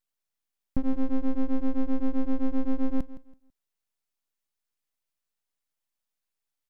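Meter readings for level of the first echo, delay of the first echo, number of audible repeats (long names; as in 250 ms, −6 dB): −16.0 dB, 165 ms, 2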